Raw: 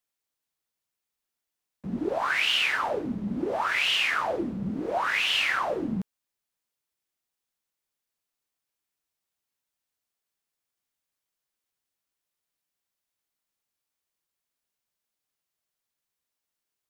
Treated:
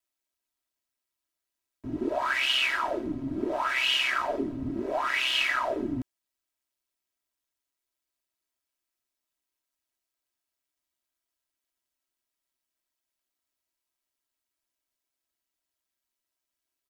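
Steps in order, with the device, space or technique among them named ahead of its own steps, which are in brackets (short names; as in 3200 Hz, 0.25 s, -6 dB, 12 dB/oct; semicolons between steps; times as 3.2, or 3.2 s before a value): ring-modulated robot voice (ring modulator 66 Hz; comb 3.1 ms, depth 71%)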